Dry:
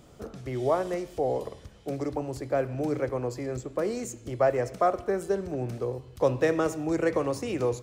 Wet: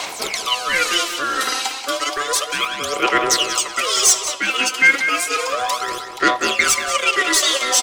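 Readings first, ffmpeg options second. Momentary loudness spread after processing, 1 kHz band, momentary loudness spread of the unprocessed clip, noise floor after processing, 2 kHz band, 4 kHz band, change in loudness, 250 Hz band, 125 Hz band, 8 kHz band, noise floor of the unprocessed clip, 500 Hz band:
8 LU, +12.0 dB, 9 LU, -31 dBFS, +22.5 dB, +30.5 dB, +12.0 dB, +0.5 dB, -12.0 dB, +27.5 dB, -51 dBFS, 0.0 dB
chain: -filter_complex "[0:a]areverse,acompressor=threshold=-37dB:ratio=6,areverse,aeval=exprs='val(0)*sin(2*PI*870*n/s)':c=same,acrossover=split=150[a][b];[b]aexciter=amount=9.4:drive=5.4:freq=2.1k[c];[a][c]amix=inputs=2:normalize=0,asplit=2[d][e];[e]highpass=f=720:p=1,volume=17dB,asoftclip=type=tanh:threshold=-9.5dB[f];[d][f]amix=inputs=2:normalize=0,lowpass=f=4k:p=1,volume=-6dB,aphaser=in_gain=1:out_gain=1:delay=3.9:decay=0.72:speed=0.32:type=sinusoidal,asplit=2[g][h];[h]adelay=186,lowpass=f=4.6k:p=1,volume=-8dB,asplit=2[i][j];[j]adelay=186,lowpass=f=4.6k:p=1,volume=0.36,asplit=2[k][l];[l]adelay=186,lowpass=f=4.6k:p=1,volume=0.36,asplit=2[m][n];[n]adelay=186,lowpass=f=4.6k:p=1,volume=0.36[o];[g][i][k][m][o]amix=inputs=5:normalize=0,volume=7dB"

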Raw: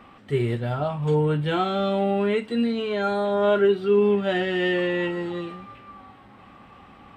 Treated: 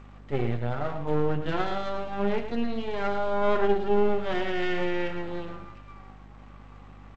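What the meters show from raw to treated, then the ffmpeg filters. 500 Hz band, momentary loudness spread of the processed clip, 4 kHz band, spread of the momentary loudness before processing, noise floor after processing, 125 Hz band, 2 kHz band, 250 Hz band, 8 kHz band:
-5.5 dB, 12 LU, -6.5 dB, 9 LU, -47 dBFS, -6.0 dB, -4.5 dB, -6.0 dB, n/a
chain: -filter_complex "[0:a]bandreject=f=49.27:t=h:w=4,bandreject=f=98.54:t=h:w=4,bandreject=f=147.81:t=h:w=4,bandreject=f=197.08:t=h:w=4,bandreject=f=246.35:t=h:w=4,bandreject=f=295.62:t=h:w=4,bandreject=f=344.89:t=h:w=4,bandreject=f=394.16:t=h:w=4,bandreject=f=443.43:t=h:w=4,bandreject=f=492.7:t=h:w=4,bandreject=f=541.97:t=h:w=4,bandreject=f=591.24:t=h:w=4,bandreject=f=640.51:t=h:w=4,bandreject=f=689.78:t=h:w=4,bandreject=f=739.05:t=h:w=4,bandreject=f=788.32:t=h:w=4,bandreject=f=837.59:t=h:w=4,bandreject=f=886.86:t=h:w=4,bandreject=f=936.13:t=h:w=4,bandreject=f=985.4:t=h:w=4,bandreject=f=1.03467k:t=h:w=4,bandreject=f=1.08394k:t=h:w=4,bandreject=f=1.13321k:t=h:w=4,bandreject=f=1.18248k:t=h:w=4,aeval=exprs='max(val(0),0)':c=same,asplit=2[a][b];[b]aecho=0:1:110:0.335[c];[a][c]amix=inputs=2:normalize=0,aeval=exprs='val(0)+0.00447*(sin(2*PI*50*n/s)+sin(2*PI*2*50*n/s)/2+sin(2*PI*3*50*n/s)/3+sin(2*PI*4*50*n/s)/4+sin(2*PI*5*50*n/s)/5)':c=same,highshelf=f=3.3k:g=-10" -ar 16000 -c:a g722

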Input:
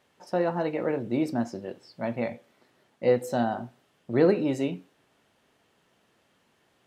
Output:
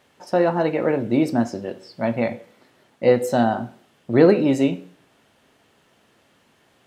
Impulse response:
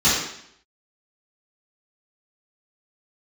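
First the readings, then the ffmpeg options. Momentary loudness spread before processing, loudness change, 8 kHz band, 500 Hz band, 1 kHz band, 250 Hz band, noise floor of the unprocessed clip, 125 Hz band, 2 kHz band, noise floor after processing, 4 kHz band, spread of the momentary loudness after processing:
16 LU, +7.5 dB, +7.5 dB, +7.0 dB, +7.5 dB, +8.0 dB, -68 dBFS, +7.0 dB, +7.5 dB, -61 dBFS, +7.5 dB, 16 LU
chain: -filter_complex "[0:a]asplit=2[a][b];[1:a]atrim=start_sample=2205,asetrate=52920,aresample=44100[c];[b][c]afir=irnorm=-1:irlink=0,volume=-33.5dB[d];[a][d]amix=inputs=2:normalize=0,volume=7.5dB"

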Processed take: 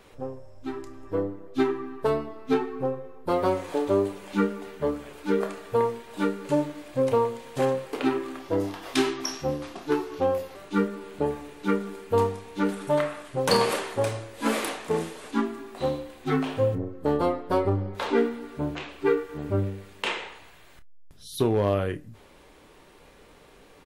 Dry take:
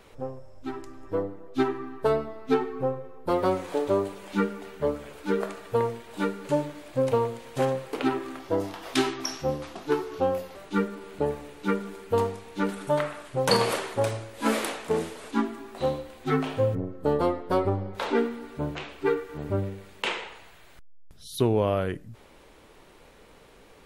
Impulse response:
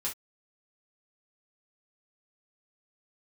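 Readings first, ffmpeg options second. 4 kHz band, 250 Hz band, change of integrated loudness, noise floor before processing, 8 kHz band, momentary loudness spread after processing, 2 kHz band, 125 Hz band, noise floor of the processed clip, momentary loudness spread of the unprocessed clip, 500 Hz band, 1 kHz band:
0.0 dB, +1.5 dB, +1.0 dB, -53 dBFS, +0.5 dB, 8 LU, +0.5 dB, +0.5 dB, -53 dBFS, 8 LU, +1.0 dB, +0.5 dB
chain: -filter_complex "[0:a]aeval=exprs='clip(val(0),-1,0.178)':c=same,asplit=2[a][b];[b]adelay=30,volume=-11dB[c];[a][c]amix=inputs=2:normalize=0,asplit=2[d][e];[1:a]atrim=start_sample=2205,asetrate=88200,aresample=44100[f];[e][f]afir=irnorm=-1:irlink=0,volume=-6dB[g];[d][g]amix=inputs=2:normalize=0,volume=-1.5dB"

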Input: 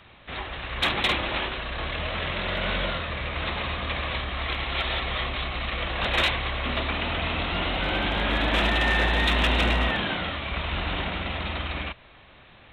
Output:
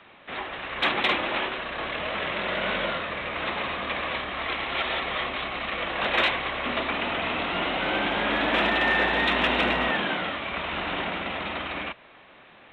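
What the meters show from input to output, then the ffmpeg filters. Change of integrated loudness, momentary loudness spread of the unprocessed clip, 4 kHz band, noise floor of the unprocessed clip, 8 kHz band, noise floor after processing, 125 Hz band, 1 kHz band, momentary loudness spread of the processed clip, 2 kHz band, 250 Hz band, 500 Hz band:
0.0 dB, 9 LU, -1.5 dB, -51 dBFS, under -10 dB, -52 dBFS, -11.0 dB, +2.0 dB, 9 LU, +1.0 dB, 0.0 dB, +2.0 dB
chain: -filter_complex "[0:a]acrossover=split=180 3500:gain=0.126 1 0.2[a][b][c];[a][b][c]amix=inputs=3:normalize=0,volume=2dB"

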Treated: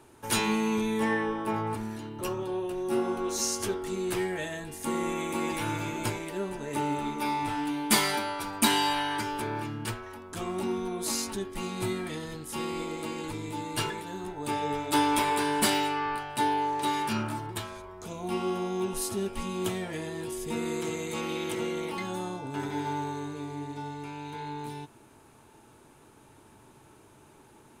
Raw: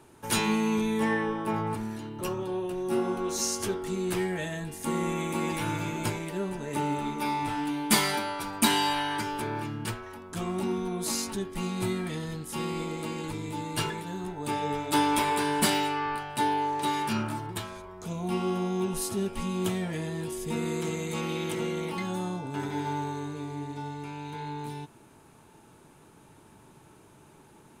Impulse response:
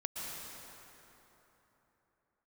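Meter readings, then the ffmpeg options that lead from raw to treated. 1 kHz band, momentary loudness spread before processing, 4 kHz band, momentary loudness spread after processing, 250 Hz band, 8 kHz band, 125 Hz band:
0.0 dB, 11 LU, 0.0 dB, 12 LU, -1.5 dB, 0.0 dB, -4.0 dB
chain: -af "equalizer=f=170:t=o:w=0.3:g=-9.5"

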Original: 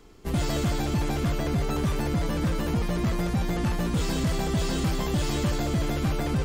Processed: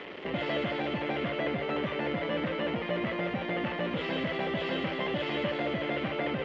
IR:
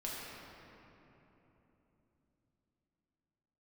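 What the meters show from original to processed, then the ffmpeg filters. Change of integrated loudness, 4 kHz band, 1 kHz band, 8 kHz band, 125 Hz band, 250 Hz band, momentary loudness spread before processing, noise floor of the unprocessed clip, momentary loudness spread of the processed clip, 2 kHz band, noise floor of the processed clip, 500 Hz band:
-4.5 dB, -1.5 dB, -1.5 dB, under -25 dB, -13.0 dB, -5.5 dB, 1 LU, -29 dBFS, 1 LU, +3.0 dB, -36 dBFS, +0.5 dB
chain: -af "aeval=exprs='val(0)+0.5*0.0106*sgn(val(0))':c=same,alimiter=level_in=0.5dB:limit=-24dB:level=0:latency=1:release=185,volume=-0.5dB,highpass=230,equalizer=f=560:t=q:w=4:g=9,equalizer=f=2k:t=q:w=4:g=9,equalizer=f=3k:t=q:w=4:g=8,lowpass=f=3.2k:w=0.5412,lowpass=f=3.2k:w=1.3066,volume=1.5dB"

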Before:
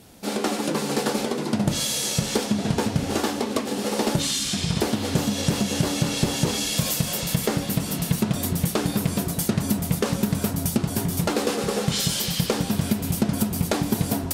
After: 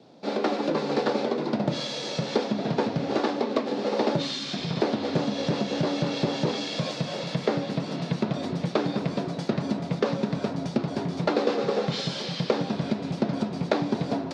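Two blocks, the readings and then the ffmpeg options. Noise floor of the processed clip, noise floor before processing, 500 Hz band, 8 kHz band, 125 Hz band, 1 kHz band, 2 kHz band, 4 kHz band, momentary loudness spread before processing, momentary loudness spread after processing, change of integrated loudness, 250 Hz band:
-35 dBFS, -30 dBFS, +1.5 dB, -18.5 dB, -5.5 dB, -0.5 dB, -3.5 dB, -5.5 dB, 2 LU, 4 LU, -3.5 dB, -3.0 dB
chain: -filter_complex "[0:a]acrossover=split=330|1300|2700[a][b][c][d];[c]acrusher=bits=6:dc=4:mix=0:aa=0.000001[e];[a][b][e][d]amix=inputs=4:normalize=0,highpass=f=150:w=0.5412,highpass=f=150:w=1.3066,equalizer=f=200:t=q:w=4:g=-6,equalizer=f=580:t=q:w=4:g=4,equalizer=f=3k:t=q:w=4:g=-6,lowpass=f=4.2k:w=0.5412,lowpass=f=4.2k:w=1.3066"

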